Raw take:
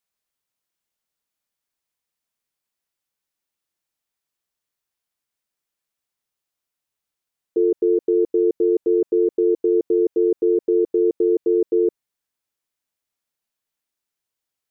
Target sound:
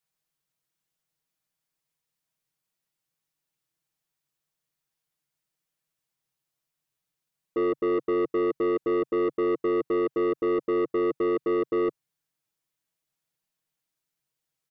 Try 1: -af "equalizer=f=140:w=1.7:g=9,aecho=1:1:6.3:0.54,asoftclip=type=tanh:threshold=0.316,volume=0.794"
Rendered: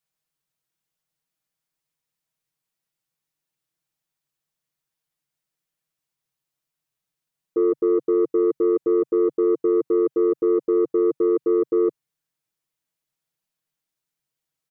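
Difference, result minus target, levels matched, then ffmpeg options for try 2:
saturation: distortion -11 dB
-af "equalizer=f=140:w=1.7:g=9,aecho=1:1:6.3:0.54,asoftclip=type=tanh:threshold=0.106,volume=0.794"

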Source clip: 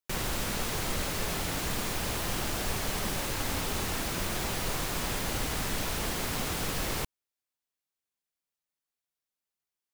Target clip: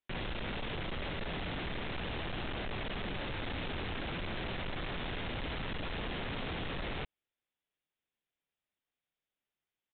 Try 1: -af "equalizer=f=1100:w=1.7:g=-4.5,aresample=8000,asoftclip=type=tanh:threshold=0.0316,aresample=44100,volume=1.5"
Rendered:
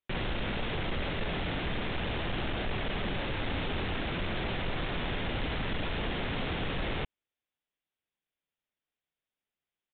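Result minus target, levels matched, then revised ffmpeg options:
saturation: distortion -7 dB
-af "equalizer=f=1100:w=1.7:g=-4.5,aresample=8000,asoftclip=type=tanh:threshold=0.0112,aresample=44100,volume=1.5"

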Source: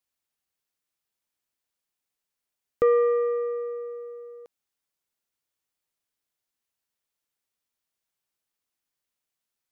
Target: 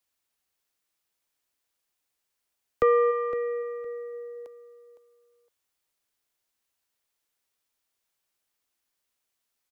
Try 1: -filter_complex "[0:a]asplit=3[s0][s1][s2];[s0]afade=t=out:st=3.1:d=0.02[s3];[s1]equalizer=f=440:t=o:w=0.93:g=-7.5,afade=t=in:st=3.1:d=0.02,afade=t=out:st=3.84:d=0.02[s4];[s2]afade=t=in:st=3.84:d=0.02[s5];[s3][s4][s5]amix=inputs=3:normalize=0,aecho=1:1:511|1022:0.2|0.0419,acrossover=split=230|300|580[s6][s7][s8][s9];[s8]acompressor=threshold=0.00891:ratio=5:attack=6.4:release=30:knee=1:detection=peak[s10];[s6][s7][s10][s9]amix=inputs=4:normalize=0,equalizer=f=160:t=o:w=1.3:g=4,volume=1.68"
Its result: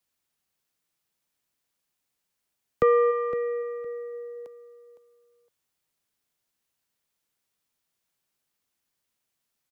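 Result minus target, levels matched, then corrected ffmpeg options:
125 Hz band +5.5 dB
-filter_complex "[0:a]asplit=3[s0][s1][s2];[s0]afade=t=out:st=3.1:d=0.02[s3];[s1]equalizer=f=440:t=o:w=0.93:g=-7.5,afade=t=in:st=3.1:d=0.02,afade=t=out:st=3.84:d=0.02[s4];[s2]afade=t=in:st=3.84:d=0.02[s5];[s3][s4][s5]amix=inputs=3:normalize=0,aecho=1:1:511|1022:0.2|0.0419,acrossover=split=230|300|580[s6][s7][s8][s9];[s8]acompressor=threshold=0.00891:ratio=5:attack=6.4:release=30:knee=1:detection=peak[s10];[s6][s7][s10][s9]amix=inputs=4:normalize=0,equalizer=f=160:t=o:w=1.3:g=-5,volume=1.68"

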